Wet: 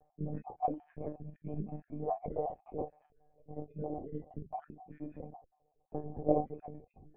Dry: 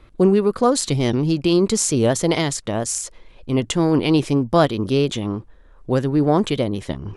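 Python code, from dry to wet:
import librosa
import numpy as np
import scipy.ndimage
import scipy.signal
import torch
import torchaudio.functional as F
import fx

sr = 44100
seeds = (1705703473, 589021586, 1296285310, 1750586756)

y = fx.spec_dropout(x, sr, seeds[0], share_pct=53)
y = fx.formant_cascade(y, sr, vowel='a')
y = fx.peak_eq(y, sr, hz=1200.0, db=-3.0, octaves=2.6)
y = fx.room_early_taps(y, sr, ms=(22, 45), db=(-8.5, -8.0))
y = fx.formant_shift(y, sr, semitones=-6)
y = fx.lpc_monotone(y, sr, seeds[1], pitch_hz=150.0, order=16)
y = y * 10.0 ** (3.0 / 20.0)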